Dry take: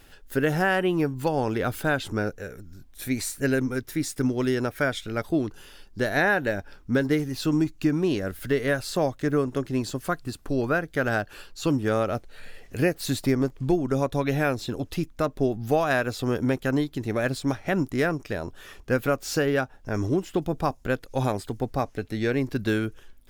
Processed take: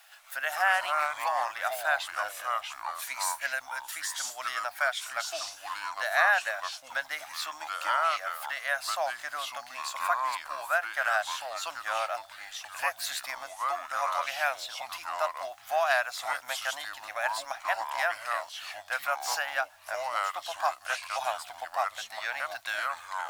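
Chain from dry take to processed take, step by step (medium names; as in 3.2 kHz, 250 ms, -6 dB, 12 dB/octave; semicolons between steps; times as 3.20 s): word length cut 10-bit, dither none; ever faster or slower copies 118 ms, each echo -4 st, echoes 2; elliptic high-pass 670 Hz, stop band 40 dB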